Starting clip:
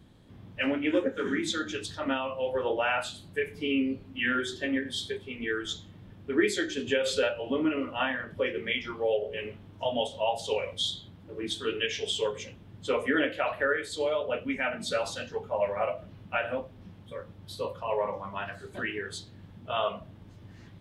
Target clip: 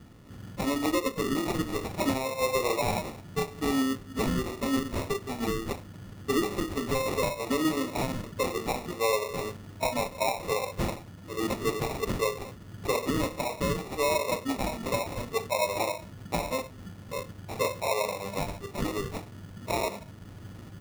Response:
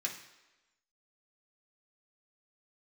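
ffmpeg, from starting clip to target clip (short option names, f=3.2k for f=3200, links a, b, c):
-af "alimiter=limit=-22.5dB:level=0:latency=1:release=451,acrusher=samples=28:mix=1:aa=0.000001,volume=5dB"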